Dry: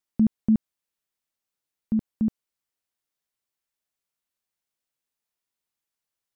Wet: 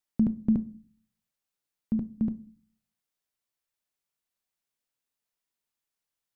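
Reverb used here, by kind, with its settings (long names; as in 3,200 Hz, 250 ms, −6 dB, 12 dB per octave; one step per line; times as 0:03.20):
rectangular room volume 280 cubic metres, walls furnished, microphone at 0.35 metres
level −1.5 dB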